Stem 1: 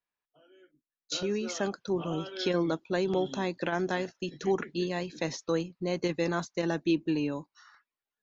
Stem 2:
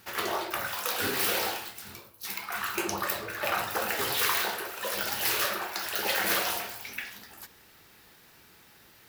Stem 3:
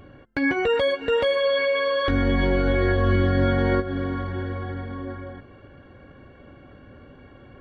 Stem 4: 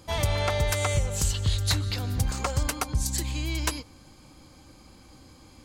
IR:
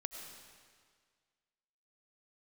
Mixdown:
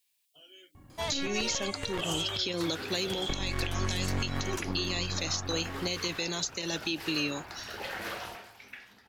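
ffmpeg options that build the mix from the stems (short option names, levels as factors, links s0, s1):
-filter_complex "[0:a]equalizer=f=5800:w=3.8:g=-3.5,alimiter=limit=0.0891:level=0:latency=1:release=79,aexciter=amount=8.1:drive=6.3:freq=2200,volume=0.841,asplit=2[s0][s1];[1:a]aemphasis=mode=reproduction:type=50fm,adelay=1750,volume=0.398[s2];[2:a]aecho=1:1:1:0.8,adynamicsmooth=sensitivity=7:basefreq=2300,aeval=exprs='0.447*(cos(1*acos(clip(val(0)/0.447,-1,1)))-cos(1*PI/2))+0.0501*(cos(3*acos(clip(val(0)/0.447,-1,1)))-cos(3*PI/2))+0.0708*(cos(6*acos(clip(val(0)/0.447,-1,1)))-cos(6*PI/2))':c=same,adelay=750,volume=0.473,asplit=3[s3][s4][s5];[s3]atrim=end=2.01,asetpts=PTS-STARTPTS,afade=t=out:st=2.006:d=0.004:c=hsin[s6];[s4]atrim=start=2.01:end=3.29,asetpts=PTS-STARTPTS,volume=0[s7];[s5]atrim=start=3.29,asetpts=PTS-STARTPTS,afade=t=in:d=0.004:c=hsin[s8];[s6][s7][s8]concat=n=3:v=0:a=1[s9];[3:a]highpass=f=190:p=1,adelay=900,volume=0.75[s10];[s1]apad=whole_len=288746[s11];[s10][s11]sidechaincompress=threshold=0.0447:ratio=8:attack=6.5:release=1190[s12];[s0][s2][s9][s12]amix=inputs=4:normalize=0,acrossover=split=700|3100[s13][s14][s15];[s13]acompressor=threshold=0.0562:ratio=4[s16];[s14]acompressor=threshold=0.0224:ratio=4[s17];[s15]acompressor=threshold=0.0355:ratio=4[s18];[s16][s17][s18]amix=inputs=3:normalize=0,alimiter=limit=0.106:level=0:latency=1:release=255"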